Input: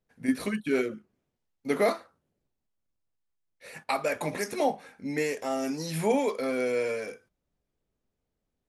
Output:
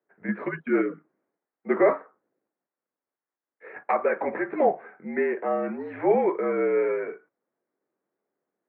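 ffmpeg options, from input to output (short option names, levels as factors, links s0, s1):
-af "highpass=f=330:t=q:w=0.5412,highpass=f=330:t=q:w=1.307,lowpass=f=2000:t=q:w=0.5176,lowpass=f=2000:t=q:w=0.7071,lowpass=f=2000:t=q:w=1.932,afreqshift=-54,volume=1.88"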